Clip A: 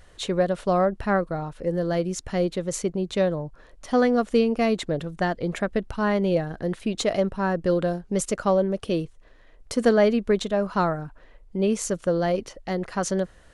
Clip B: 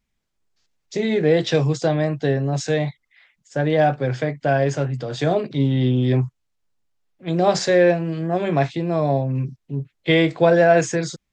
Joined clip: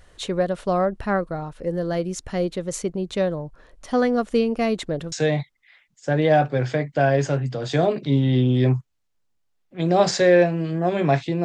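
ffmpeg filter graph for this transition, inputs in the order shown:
ffmpeg -i cue0.wav -i cue1.wav -filter_complex "[0:a]apad=whole_dur=11.44,atrim=end=11.44,atrim=end=5.122[link_01];[1:a]atrim=start=2.598:end=8.92[link_02];[link_01][link_02]acrossfade=duration=0.004:curve1=hsin:curve2=hsin" out.wav

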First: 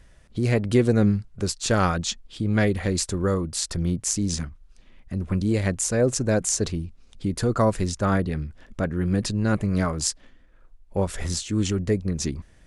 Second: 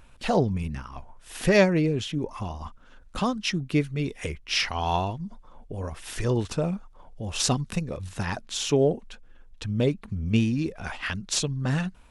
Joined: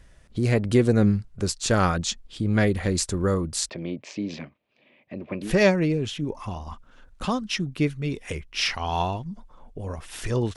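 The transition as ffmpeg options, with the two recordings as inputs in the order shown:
ffmpeg -i cue0.wav -i cue1.wav -filter_complex "[0:a]asettb=1/sr,asplit=3[link_01][link_02][link_03];[link_01]atrim=end=3.694[link_04];[link_02]atrim=start=3.69:end=5.53,asetpts=PTS-STARTPTS,afade=type=in:duration=0.004:curve=qsin,afade=type=out:start_time=1.836:duration=0.004:curve=qsin,highpass=frequency=160:width=0.5412,highpass=frequency=160:width=1.3066,equalizer=frequency=180:width_type=q:width=4:gain=-9,equalizer=frequency=600:width_type=q:width=4:gain=8,equalizer=frequency=1400:width_type=q:width=4:gain=-10,equalizer=frequency=2400:width_type=q:width=4:gain=8,lowpass=frequency=3600:width=0.5412,lowpass=frequency=3600:width=1.3066[link_05];[link_03]atrim=start=5.526[link_06];[link_04][link_05]acrossfade=duration=0.004:curve1=hsin:curve2=qsin[link_07];[link_07][link_06]acrossfade=duration=0.004:curve1=qsin:curve2=hsin,apad=whole_dur=10.56,atrim=end=10.56,atrim=end=5.53,asetpts=PTS-STARTPTS[link_08];[1:a]atrim=start=1.35:end=6.5,asetpts=PTS-STARTPTS[link_09];[link_08][link_09]acrossfade=duration=0.12:curve1=tri:curve2=tri" out.wav

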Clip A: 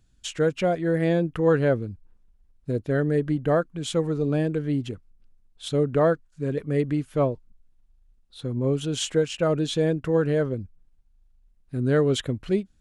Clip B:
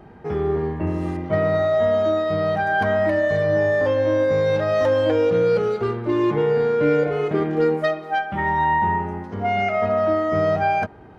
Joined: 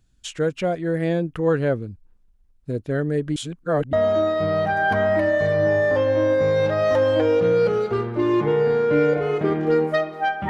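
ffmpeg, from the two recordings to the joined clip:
ffmpeg -i cue0.wav -i cue1.wav -filter_complex "[0:a]apad=whole_dur=10.49,atrim=end=10.49,asplit=2[link_01][link_02];[link_01]atrim=end=3.362[link_03];[link_02]atrim=start=3.358:end=3.932,asetpts=PTS-STARTPTS,areverse[link_04];[1:a]atrim=start=1.828:end=8.39[link_05];[link_03][link_04]acrossfade=duration=0.004:curve1=hsin:curve2=hsin[link_06];[link_06][link_05]acrossfade=duration=0.004:curve1=hsin:curve2=hsin" out.wav

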